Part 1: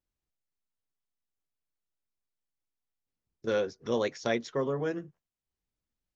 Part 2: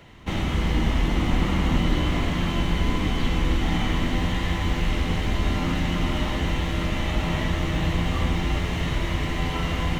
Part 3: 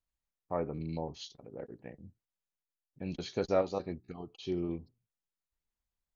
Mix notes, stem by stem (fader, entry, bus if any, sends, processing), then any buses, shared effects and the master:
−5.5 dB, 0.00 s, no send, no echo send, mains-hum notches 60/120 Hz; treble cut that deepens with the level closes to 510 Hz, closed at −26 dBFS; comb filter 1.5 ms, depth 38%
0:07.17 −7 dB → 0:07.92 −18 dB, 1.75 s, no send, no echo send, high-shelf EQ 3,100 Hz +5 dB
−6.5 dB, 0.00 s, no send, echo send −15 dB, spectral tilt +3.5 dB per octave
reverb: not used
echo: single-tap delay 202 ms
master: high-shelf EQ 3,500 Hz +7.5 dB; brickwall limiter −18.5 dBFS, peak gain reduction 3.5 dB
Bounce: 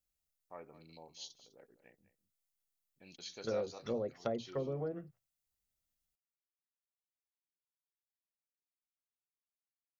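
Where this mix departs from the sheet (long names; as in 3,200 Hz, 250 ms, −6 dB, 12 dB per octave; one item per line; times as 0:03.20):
stem 2: muted
stem 3 −6.5 dB → −14.0 dB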